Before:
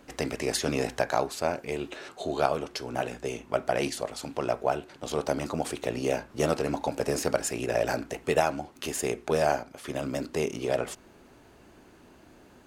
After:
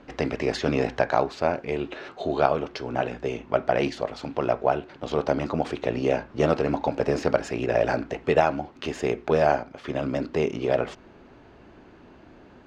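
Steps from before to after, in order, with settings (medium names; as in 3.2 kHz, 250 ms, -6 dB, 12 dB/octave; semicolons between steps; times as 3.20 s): distance through air 200 m; trim +5 dB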